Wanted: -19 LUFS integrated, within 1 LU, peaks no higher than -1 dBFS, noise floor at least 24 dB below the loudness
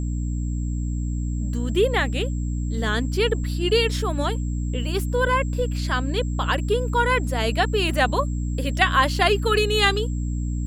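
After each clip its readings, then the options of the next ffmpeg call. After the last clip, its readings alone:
hum 60 Hz; harmonics up to 300 Hz; hum level -23 dBFS; steady tone 7600 Hz; tone level -46 dBFS; loudness -23.0 LUFS; peak -3.0 dBFS; loudness target -19.0 LUFS
-> -af "bandreject=f=60:t=h:w=4,bandreject=f=120:t=h:w=4,bandreject=f=180:t=h:w=4,bandreject=f=240:t=h:w=4,bandreject=f=300:t=h:w=4"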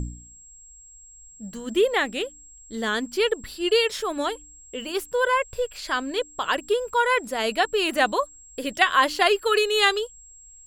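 hum none; steady tone 7600 Hz; tone level -46 dBFS
-> -af "bandreject=f=7.6k:w=30"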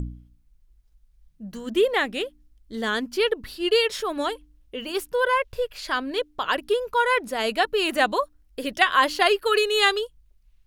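steady tone none; loudness -23.5 LUFS; peak -3.5 dBFS; loudness target -19.0 LUFS
-> -af "volume=4.5dB,alimiter=limit=-1dB:level=0:latency=1"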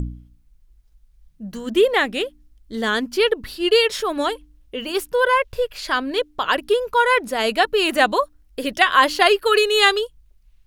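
loudness -19.0 LUFS; peak -1.0 dBFS; noise floor -56 dBFS

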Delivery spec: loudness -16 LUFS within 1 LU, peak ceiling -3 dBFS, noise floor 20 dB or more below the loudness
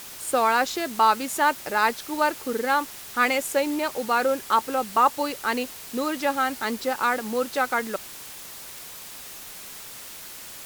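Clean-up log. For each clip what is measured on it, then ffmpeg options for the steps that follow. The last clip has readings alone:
noise floor -41 dBFS; noise floor target -45 dBFS; loudness -24.5 LUFS; peak -7.0 dBFS; loudness target -16.0 LUFS
-> -af "afftdn=nr=6:nf=-41"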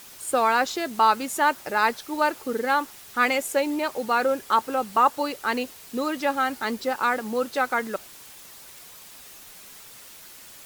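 noise floor -46 dBFS; loudness -24.5 LUFS; peak -7.5 dBFS; loudness target -16.0 LUFS
-> -af "volume=8.5dB,alimiter=limit=-3dB:level=0:latency=1"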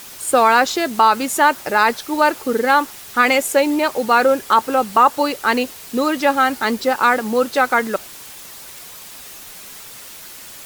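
loudness -16.5 LUFS; peak -3.0 dBFS; noise floor -37 dBFS

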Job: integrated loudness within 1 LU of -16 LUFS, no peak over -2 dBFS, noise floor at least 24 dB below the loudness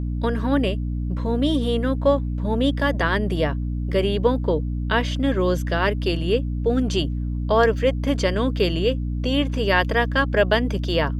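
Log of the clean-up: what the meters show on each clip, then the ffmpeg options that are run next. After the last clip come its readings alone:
hum 60 Hz; harmonics up to 300 Hz; hum level -23 dBFS; loudness -22.0 LUFS; peak -4.0 dBFS; loudness target -16.0 LUFS
-> -af "bandreject=f=60:t=h:w=4,bandreject=f=120:t=h:w=4,bandreject=f=180:t=h:w=4,bandreject=f=240:t=h:w=4,bandreject=f=300:t=h:w=4"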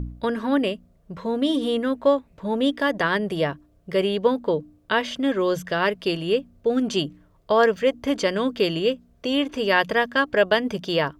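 hum none; loudness -23.0 LUFS; peak -4.5 dBFS; loudness target -16.0 LUFS
-> -af "volume=7dB,alimiter=limit=-2dB:level=0:latency=1"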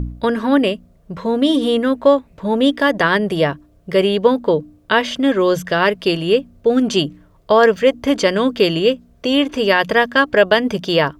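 loudness -16.5 LUFS; peak -2.0 dBFS; noise floor -52 dBFS

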